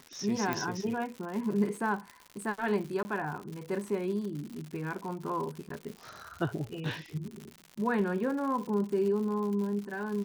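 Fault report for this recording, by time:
crackle 150 per s -37 dBFS
0.53 s: pop -16 dBFS
3.03–3.05 s: dropout 20 ms
5.69–5.70 s: dropout 13 ms

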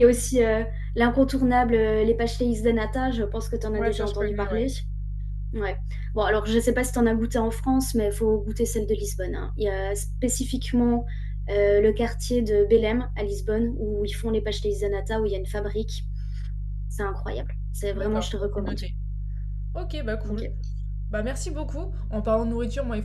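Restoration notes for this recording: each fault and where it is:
hum 50 Hz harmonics 3 -30 dBFS

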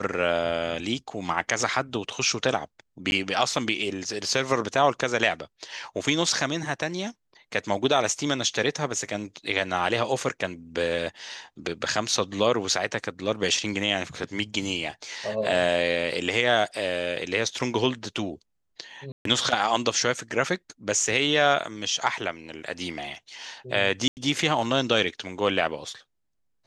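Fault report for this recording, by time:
3.11–3.12 s: dropout
19.12–19.25 s: dropout 133 ms
24.08–24.17 s: dropout 89 ms

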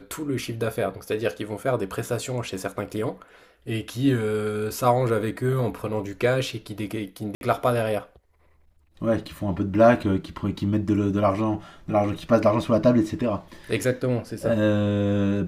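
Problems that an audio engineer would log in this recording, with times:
7.35–7.41 s: dropout 61 ms

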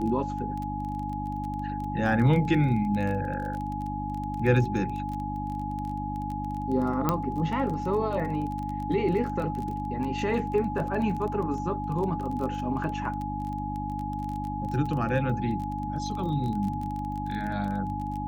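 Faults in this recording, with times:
crackle 20 per s -32 dBFS
hum 50 Hz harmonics 6 -34 dBFS
whine 840 Hz -33 dBFS
7.09 s: pop -10 dBFS

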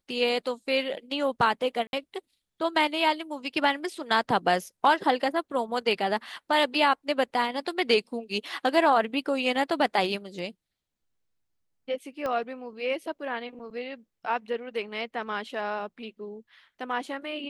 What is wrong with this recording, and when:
1.87–1.93 s: dropout 61 ms
12.26 s: pop -19 dBFS

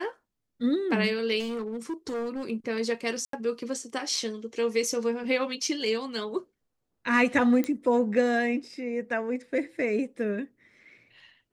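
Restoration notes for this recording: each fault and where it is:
1.39–2.43 s: clipped -28.5 dBFS
3.25–3.33 s: dropout 83 ms
7.64 s: pop -16 dBFS

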